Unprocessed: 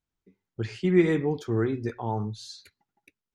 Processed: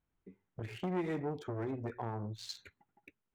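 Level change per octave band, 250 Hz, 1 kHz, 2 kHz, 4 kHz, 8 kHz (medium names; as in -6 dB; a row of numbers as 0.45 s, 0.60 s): -13.0 dB, -7.0 dB, -12.5 dB, -5.5 dB, no reading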